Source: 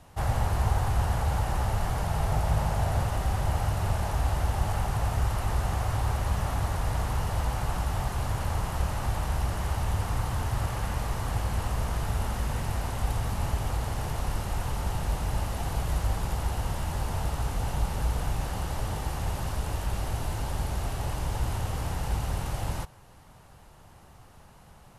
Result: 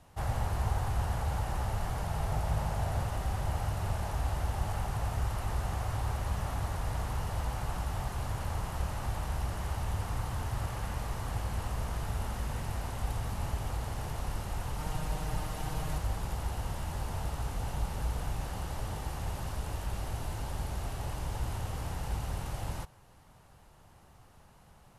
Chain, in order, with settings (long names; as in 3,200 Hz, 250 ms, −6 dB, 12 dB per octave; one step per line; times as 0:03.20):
0:14.78–0:15.98: comb filter 6.5 ms, depth 73%
level −5.5 dB